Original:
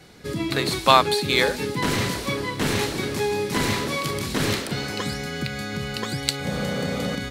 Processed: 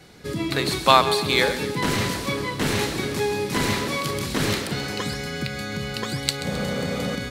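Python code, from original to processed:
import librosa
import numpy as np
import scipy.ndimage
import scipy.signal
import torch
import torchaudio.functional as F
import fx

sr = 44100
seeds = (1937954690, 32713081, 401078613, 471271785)

y = fx.echo_feedback(x, sr, ms=132, feedback_pct=48, wet_db=-13.5)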